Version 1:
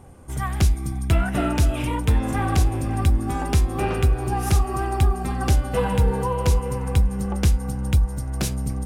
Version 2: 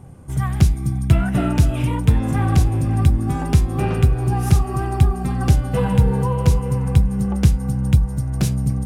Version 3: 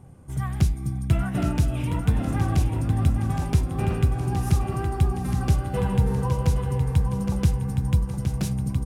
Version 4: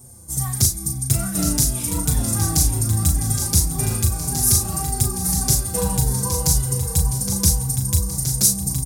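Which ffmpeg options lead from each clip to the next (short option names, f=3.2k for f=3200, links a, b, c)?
-af "equalizer=f=140:w=1.1:g=11.5,volume=-1dB"
-af "aecho=1:1:817|1634|2451|3268|4085:0.447|0.205|0.0945|0.0435|0.02,volume=-6.5dB"
-filter_complex "[0:a]aexciter=amount=13.9:drive=4.7:freq=4.3k,asplit=2[a][b];[b]adelay=37,volume=-5.5dB[c];[a][c]amix=inputs=2:normalize=0,asplit=2[d][e];[e]adelay=5.1,afreqshift=-1.8[f];[d][f]amix=inputs=2:normalize=1,volume=2dB"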